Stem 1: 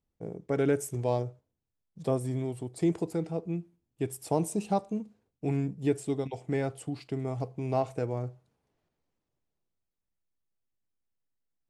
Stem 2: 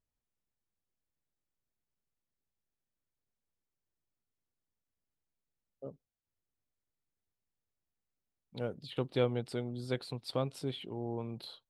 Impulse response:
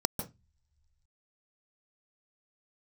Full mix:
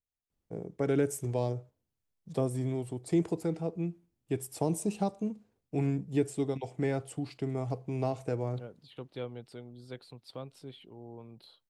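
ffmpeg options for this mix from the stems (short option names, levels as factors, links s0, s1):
-filter_complex "[0:a]adelay=300,volume=0.944[s0];[1:a]volume=0.355[s1];[s0][s1]amix=inputs=2:normalize=0,acrossover=split=430|3000[s2][s3][s4];[s3]acompressor=threshold=0.0251:ratio=6[s5];[s2][s5][s4]amix=inputs=3:normalize=0"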